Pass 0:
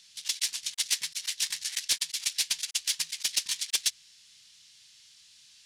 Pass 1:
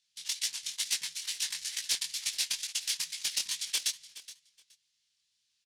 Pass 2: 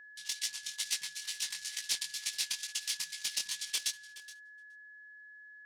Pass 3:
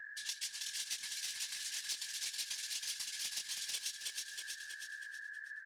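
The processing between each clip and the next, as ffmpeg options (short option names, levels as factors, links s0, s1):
-af "agate=range=0.126:threshold=0.00224:ratio=16:detection=peak,flanger=delay=17.5:depth=6.2:speed=2.2,aecho=1:1:421|842:0.15|0.0269"
-af "aeval=exprs='0.15*(cos(1*acos(clip(val(0)/0.15,-1,1)))-cos(1*PI/2))+0.00944*(cos(3*acos(clip(val(0)/0.15,-1,1)))-cos(3*PI/2))+0.00106*(cos(5*acos(clip(val(0)/0.15,-1,1)))-cos(5*PI/2))+0.00188*(cos(7*acos(clip(val(0)/0.15,-1,1)))-cos(7*PI/2))':c=same,agate=range=0.282:threshold=0.00158:ratio=16:detection=peak,aeval=exprs='val(0)+0.00355*sin(2*PI*1700*n/s)':c=same,volume=0.841"
-filter_complex "[0:a]afftfilt=real='hypot(re,im)*cos(2*PI*random(0))':imag='hypot(re,im)*sin(2*PI*random(1))':win_size=512:overlap=0.75,asplit=2[s0][s1];[s1]asplit=5[s2][s3][s4][s5][s6];[s2]adelay=320,afreqshift=-32,volume=0.562[s7];[s3]adelay=640,afreqshift=-64,volume=0.219[s8];[s4]adelay=960,afreqshift=-96,volume=0.0851[s9];[s5]adelay=1280,afreqshift=-128,volume=0.0335[s10];[s6]adelay=1600,afreqshift=-160,volume=0.013[s11];[s7][s8][s9][s10][s11]amix=inputs=5:normalize=0[s12];[s0][s12]amix=inputs=2:normalize=0,acompressor=threshold=0.00251:ratio=3,volume=3.35"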